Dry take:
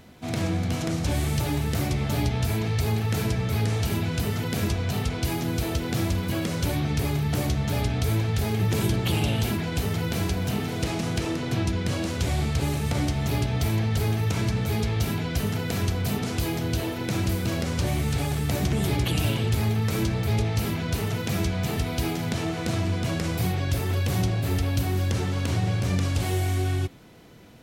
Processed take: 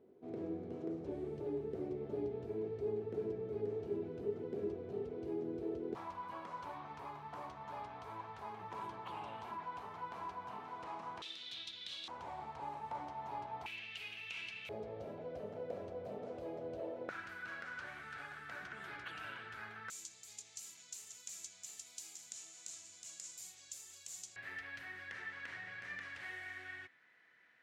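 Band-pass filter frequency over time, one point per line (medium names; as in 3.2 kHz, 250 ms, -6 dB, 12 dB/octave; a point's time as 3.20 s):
band-pass filter, Q 7.1
400 Hz
from 5.95 s 1 kHz
from 11.22 s 3.6 kHz
from 12.08 s 920 Hz
from 13.66 s 2.7 kHz
from 14.69 s 560 Hz
from 17.09 s 1.5 kHz
from 19.90 s 7.1 kHz
from 24.36 s 1.8 kHz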